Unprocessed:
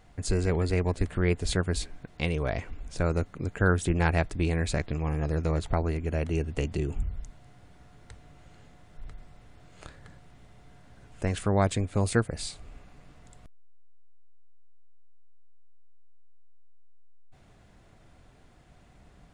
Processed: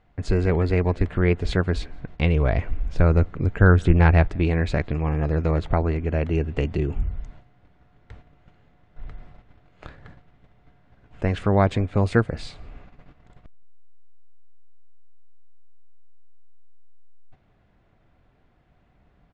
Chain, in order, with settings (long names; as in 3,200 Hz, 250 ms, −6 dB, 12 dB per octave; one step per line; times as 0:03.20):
low-pass filter 3,000 Hz 12 dB per octave
noise gate −49 dBFS, range −10 dB
0:01.97–0:04.28: low-shelf EQ 99 Hz +10 dB
slap from a distant wall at 29 metres, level −29 dB
level +5.5 dB